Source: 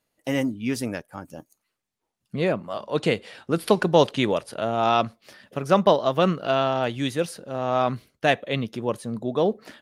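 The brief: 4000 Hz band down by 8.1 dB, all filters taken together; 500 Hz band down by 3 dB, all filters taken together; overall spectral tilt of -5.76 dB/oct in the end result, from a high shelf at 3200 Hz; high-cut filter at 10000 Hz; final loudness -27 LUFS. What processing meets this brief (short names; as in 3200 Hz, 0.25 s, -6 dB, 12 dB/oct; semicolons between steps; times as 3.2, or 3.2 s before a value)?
LPF 10000 Hz; bell 500 Hz -3.5 dB; high shelf 3200 Hz -7 dB; bell 4000 Hz -6 dB; gain -0.5 dB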